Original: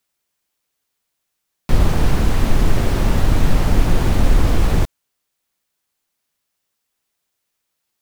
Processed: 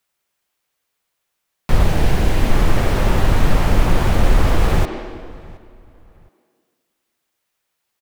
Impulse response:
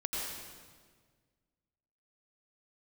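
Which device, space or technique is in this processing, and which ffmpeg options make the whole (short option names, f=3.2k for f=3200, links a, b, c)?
filtered reverb send: -filter_complex "[0:a]asplit=2[a][b];[b]highpass=f=270:w=0.5412,highpass=f=270:w=1.3066,lowpass=3.5k[c];[1:a]atrim=start_sample=2205[d];[c][d]afir=irnorm=-1:irlink=0,volume=-6dB[e];[a][e]amix=inputs=2:normalize=0,asettb=1/sr,asplit=3[f][g][h];[f]atrim=end=1.834[i];[g]atrim=start=1.83:end=2.5,asetpts=PTS-STARTPTS,afade=t=in:d=0.004:c=qsin,afade=t=out:st=0.666:d=0.004:c=qsin,equalizer=f=1.2k:t=o:w=0.62:g=-6[j];[h]atrim=start=2.496[k];[i][j]acrossfade=d=0.004:c1=hsin:c2=qsin[l];[l][k]acrossfade=d=0.004:c1=qsin:c2=hsin,asplit=2[m][n];[n]adelay=718,lowpass=f=2.9k:p=1,volume=-22.5dB,asplit=2[o][p];[p]adelay=718,lowpass=f=2.9k:p=1,volume=0.3[q];[m][o][q]amix=inputs=3:normalize=0"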